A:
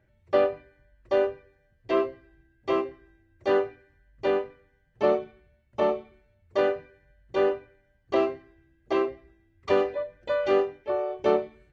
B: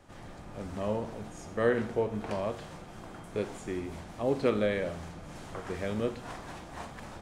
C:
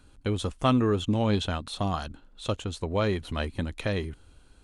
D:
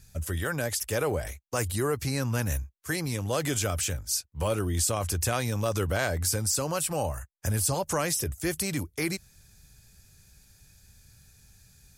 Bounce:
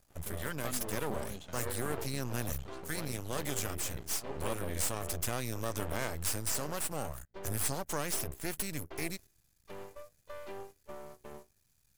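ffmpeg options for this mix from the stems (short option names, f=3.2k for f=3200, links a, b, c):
-filter_complex "[0:a]alimiter=limit=-18.5dB:level=0:latency=1:release=111,dynaudnorm=f=160:g=9:m=4dB,volume=-17.5dB[a];[1:a]volume=-4.5dB[b];[2:a]volume=-15dB[c];[3:a]highshelf=f=9.8k:g=9.5,volume=-5.5dB,asplit=2[d][e];[e]apad=whole_len=318363[f];[b][f]sidechaincompress=threshold=-34dB:ratio=8:attack=37:release=1330[g];[a][g][c][d]amix=inputs=4:normalize=0,agate=range=-8dB:threshold=-47dB:ratio=16:detection=peak,aeval=exprs='max(val(0),0)':c=same"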